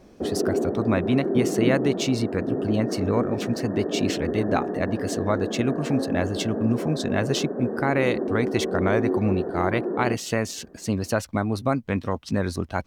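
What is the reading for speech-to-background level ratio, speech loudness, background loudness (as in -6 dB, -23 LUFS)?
2.0 dB, -26.0 LUFS, -28.0 LUFS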